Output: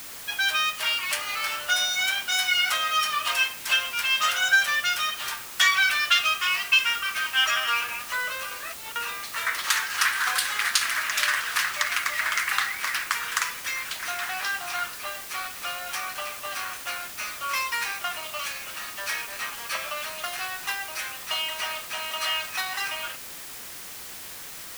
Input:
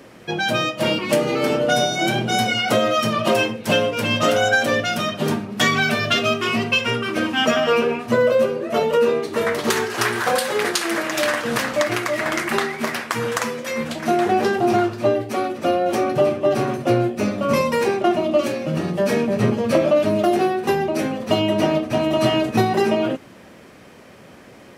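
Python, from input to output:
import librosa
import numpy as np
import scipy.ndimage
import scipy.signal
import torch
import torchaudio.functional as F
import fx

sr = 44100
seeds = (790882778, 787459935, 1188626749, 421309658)

y = scipy.signal.sosfilt(scipy.signal.butter(4, 1200.0, 'highpass', fs=sr, output='sos'), x)
y = fx.over_compress(y, sr, threshold_db=-39.0, ratio=-0.5, at=(8.51, 8.96))
y = fx.dmg_noise_colour(y, sr, seeds[0], colour='white', level_db=-40.0)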